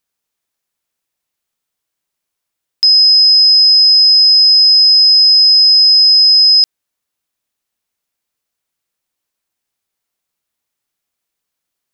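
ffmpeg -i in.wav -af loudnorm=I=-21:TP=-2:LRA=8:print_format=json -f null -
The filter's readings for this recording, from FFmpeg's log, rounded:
"input_i" : "-4.4",
"input_tp" : "-4.2",
"input_lra" : "6.7",
"input_thresh" : "-14.4",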